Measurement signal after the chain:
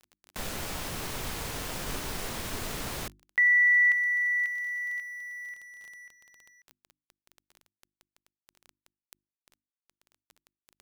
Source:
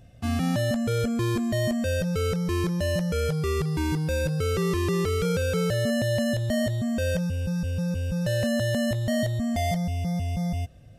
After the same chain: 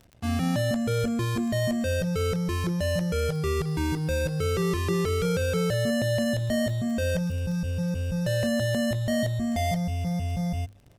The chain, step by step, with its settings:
dead-zone distortion −52.5 dBFS
surface crackle 12 per second −36 dBFS
mains-hum notches 50/100/150/200/250/300/350 Hz

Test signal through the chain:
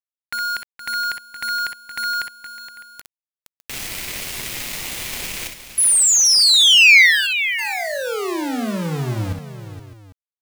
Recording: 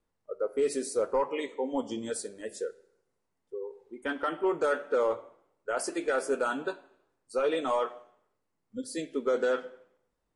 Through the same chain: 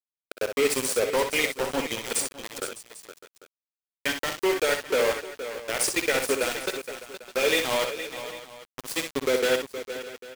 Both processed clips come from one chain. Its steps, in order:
high shelf with overshoot 1,700 Hz +8 dB, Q 3
centre clipping without the shift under −27.5 dBFS
multi-tap delay 55/63/468/606/797 ms −15.5/−7.5/−11.5/−17/−19 dB
level +4 dB

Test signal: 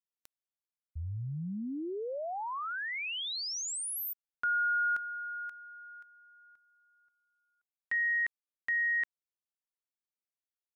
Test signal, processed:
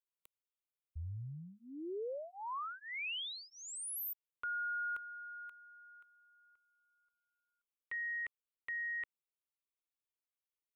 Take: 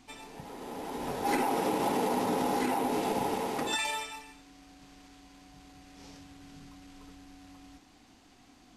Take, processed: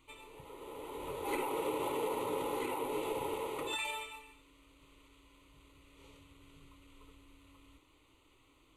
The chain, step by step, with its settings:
phaser with its sweep stopped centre 1,100 Hz, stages 8
level −3 dB

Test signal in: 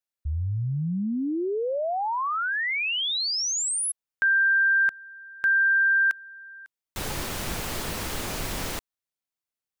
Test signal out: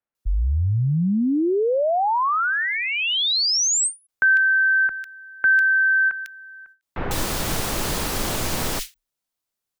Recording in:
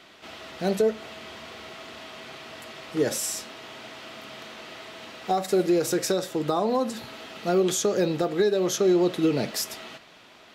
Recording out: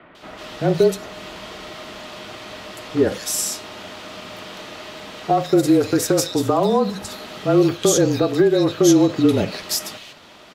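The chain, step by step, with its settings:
frequency shifter −30 Hz
multiband delay without the direct sound lows, highs 150 ms, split 2,200 Hz
every ending faded ahead of time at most 290 dB per second
level +7 dB

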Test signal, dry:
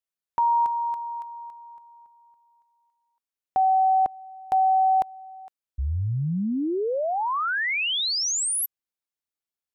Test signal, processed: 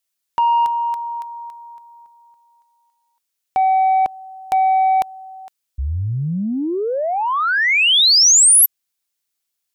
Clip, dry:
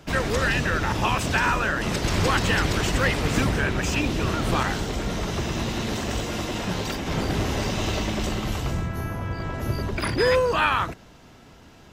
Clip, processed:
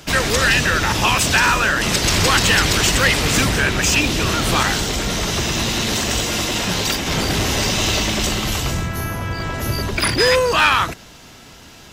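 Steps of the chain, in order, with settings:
soft clipping −14 dBFS
high-shelf EQ 2,100 Hz +11.5 dB
level +4.5 dB

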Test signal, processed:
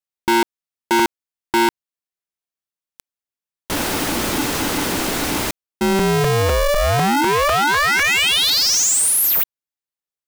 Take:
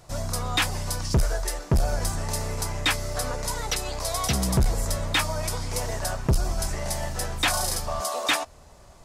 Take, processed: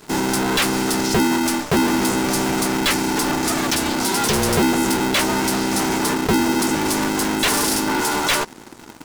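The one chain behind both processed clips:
leveller curve on the samples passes 3
regular buffer underruns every 0.25 s, samples 128, repeat, from 0:00.99
ring modulator with a square carrier 290 Hz

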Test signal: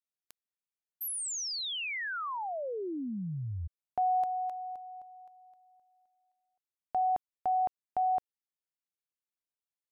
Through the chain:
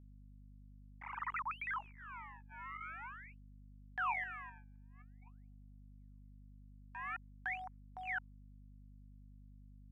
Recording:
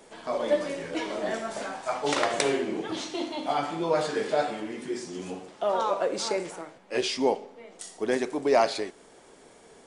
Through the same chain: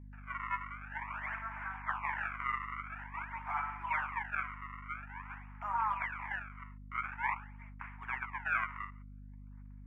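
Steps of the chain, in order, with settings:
sample-and-hold swept by an LFO 31×, swing 160% 0.48 Hz
elliptic band-pass filter 930–2,300 Hz, stop band 40 dB
noise gate −58 dBFS, range −22 dB
mains hum 50 Hz, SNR 10 dB
level −1 dB

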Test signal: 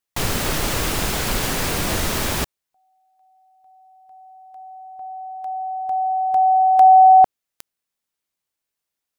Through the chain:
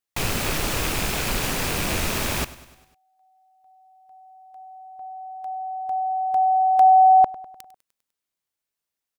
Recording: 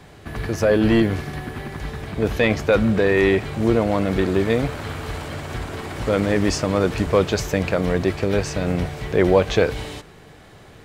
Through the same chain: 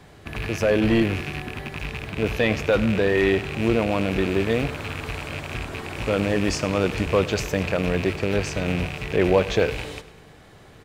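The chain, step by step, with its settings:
loose part that buzzes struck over −30 dBFS, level −17 dBFS
repeating echo 100 ms, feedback 57%, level −18 dB
level −3 dB

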